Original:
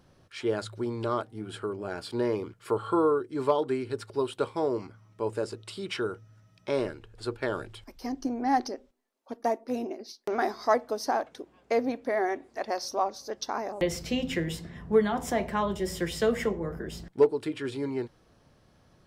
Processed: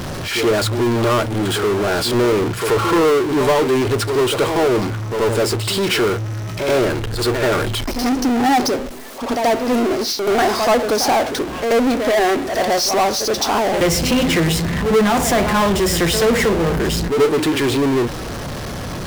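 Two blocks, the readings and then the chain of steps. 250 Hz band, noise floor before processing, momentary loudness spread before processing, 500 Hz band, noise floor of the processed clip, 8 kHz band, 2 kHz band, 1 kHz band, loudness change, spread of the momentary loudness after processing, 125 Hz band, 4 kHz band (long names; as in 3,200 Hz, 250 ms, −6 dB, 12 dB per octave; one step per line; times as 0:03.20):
+14.0 dB, −63 dBFS, 12 LU, +12.0 dB, −27 dBFS, +20.0 dB, +16.0 dB, +12.0 dB, +13.0 dB, 6 LU, +17.5 dB, +19.5 dB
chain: echo ahead of the sound 82 ms −15 dB
power curve on the samples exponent 0.35
level +2.5 dB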